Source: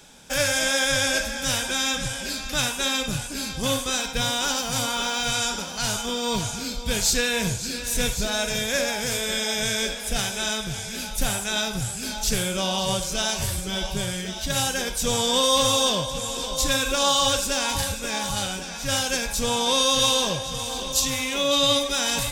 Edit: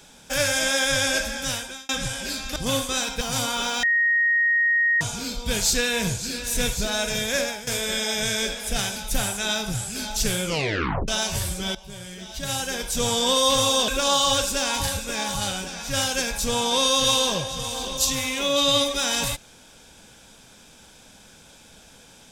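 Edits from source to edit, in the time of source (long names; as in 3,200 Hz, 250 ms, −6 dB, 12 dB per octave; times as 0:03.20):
0:01.35–0:01.89: fade out
0:02.56–0:03.53: remove
0:04.18–0:04.61: remove
0:05.23–0:06.41: beep over 1,870 Hz −17 dBFS
0:08.80–0:09.07: fade out, to −15 dB
0:10.36–0:11.03: remove
0:12.52: tape stop 0.63 s
0:13.82–0:15.11: fade in, from −17.5 dB
0:15.95–0:16.83: remove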